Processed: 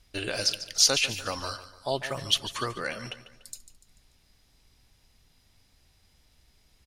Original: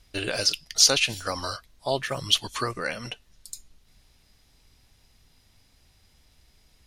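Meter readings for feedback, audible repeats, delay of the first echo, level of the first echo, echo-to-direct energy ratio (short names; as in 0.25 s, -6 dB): 44%, 3, 0.146 s, -14.0 dB, -13.0 dB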